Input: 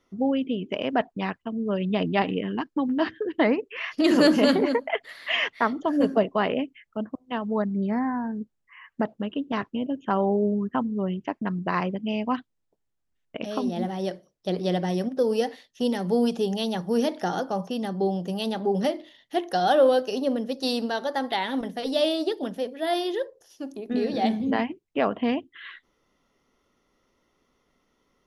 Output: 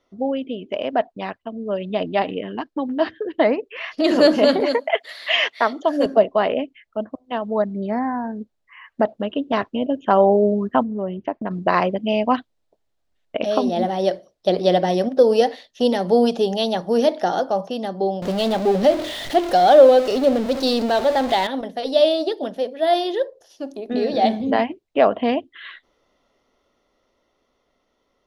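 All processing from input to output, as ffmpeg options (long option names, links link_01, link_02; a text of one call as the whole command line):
ffmpeg -i in.wav -filter_complex "[0:a]asettb=1/sr,asplit=3[link_01][link_02][link_03];[link_01]atrim=end=4.604[link_04];[link_02]atrim=start=4.6:end=6.06,asetpts=PTS-STARTPTS,afade=type=in:duration=0.004:curve=qsin,afade=type=out:start_time=1.456:duration=0.004:curve=qsin,highpass=220,highshelf=frequency=2700:gain=9.5[link_05];[link_03]atrim=start=6.056[link_06];[link_04][link_05]acrossfade=duration=0.004:curve1=hsin:curve2=qsin[link_07];[link_07][link_06]acrossfade=duration=0.004:curve1=qsin:curve2=hsin,asettb=1/sr,asplit=3[link_08][link_09][link_10];[link_08]atrim=end=10.834[link_11];[link_09]atrim=start=10.83:end=11.51,asetpts=PTS-STARTPTS,afade=type=in:duration=0.004:curve=qsin,afade=type=out:start_time=0.676:duration=0.004:curve=qsin,lowpass=frequency=1400:poles=1,acompressor=threshold=-29dB:ratio=2.5:attack=3.2:release=140:knee=1:detection=peak[link_12];[link_10]atrim=start=11.506[link_13];[link_11][link_12]acrossfade=duration=0.004:curve1=hsin:curve2=qsin[link_14];[link_14][link_13]acrossfade=duration=0.004:curve1=qsin:curve2=hsin,asettb=1/sr,asplit=3[link_15][link_16][link_17];[link_15]atrim=end=18.224[link_18];[link_16]atrim=start=18.22:end=21.47,asetpts=PTS-STARTPTS,afade=type=in:duration=0.004:curve=qsin,afade=type=out:start_time=3.246:duration=0.004:curve=qsin,aeval=exprs='val(0)+0.5*0.0422*sgn(val(0))':channel_layout=same,lowshelf=frequency=430:gain=4.5[link_19];[link_17]atrim=start=21.466[link_20];[link_18][link_19]acrossfade=duration=0.004:curve1=hsin:curve2=qsin[link_21];[link_21][link_20]acrossfade=duration=0.004:curve1=qsin:curve2=hsin,equalizer=frequency=160:width_type=o:width=0.67:gain=-6,equalizer=frequency=630:width_type=o:width=0.67:gain=8,equalizer=frequency=4000:width_type=o:width=0.67:gain=5,dynaudnorm=framelen=310:gausssize=17:maxgain=11.5dB,highshelf=frequency=8600:gain=-8,volume=-1dB" out.wav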